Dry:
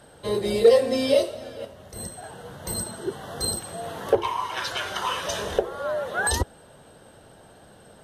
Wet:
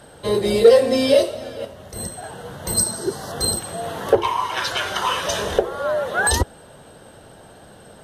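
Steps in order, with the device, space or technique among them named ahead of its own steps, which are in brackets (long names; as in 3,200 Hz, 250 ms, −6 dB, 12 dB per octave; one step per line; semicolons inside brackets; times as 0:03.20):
parallel distortion (in parallel at −11 dB: hard clipping −19.5 dBFS, distortion −7 dB)
0:02.77–0:03.32: on the sum: high shelf with overshoot 3,900 Hz +6 dB, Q 3
level +3.5 dB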